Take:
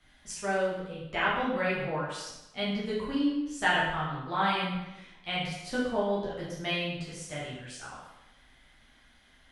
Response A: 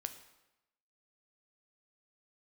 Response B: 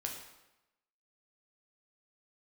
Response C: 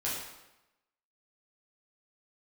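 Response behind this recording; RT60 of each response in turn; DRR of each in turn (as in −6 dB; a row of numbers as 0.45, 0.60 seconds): C; 0.95, 0.95, 0.95 seconds; 8.0, 0.5, −8.0 decibels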